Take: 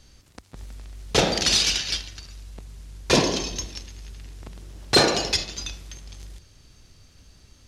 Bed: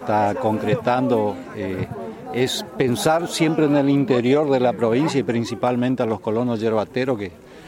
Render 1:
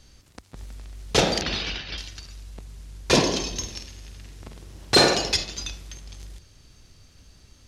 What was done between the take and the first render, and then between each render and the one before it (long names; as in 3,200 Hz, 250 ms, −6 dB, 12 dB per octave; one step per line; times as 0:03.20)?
0:01.41–0:01.98: high-frequency loss of the air 310 metres
0:03.54–0:05.15: flutter between parallel walls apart 8.5 metres, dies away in 0.39 s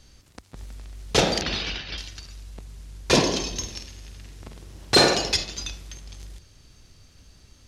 no processing that can be heard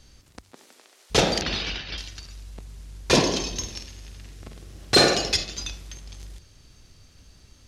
0:00.51–0:01.10: high-pass filter 230 Hz → 490 Hz 24 dB per octave
0:04.33–0:05.57: notch filter 930 Hz, Q 6.2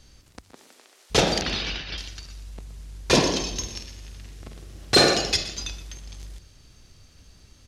single-tap delay 121 ms −14.5 dB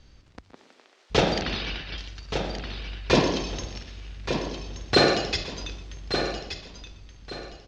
high-frequency loss of the air 150 metres
repeating echo 1,175 ms, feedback 27%, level −8 dB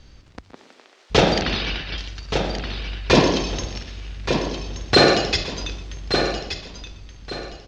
level +6 dB
brickwall limiter −3 dBFS, peak gain reduction 2 dB